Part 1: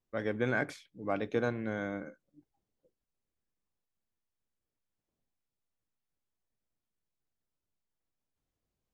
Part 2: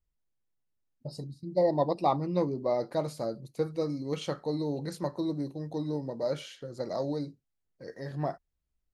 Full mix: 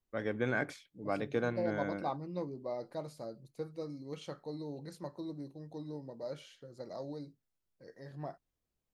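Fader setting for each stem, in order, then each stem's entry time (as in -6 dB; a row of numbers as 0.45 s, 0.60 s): -2.0 dB, -10.5 dB; 0.00 s, 0.00 s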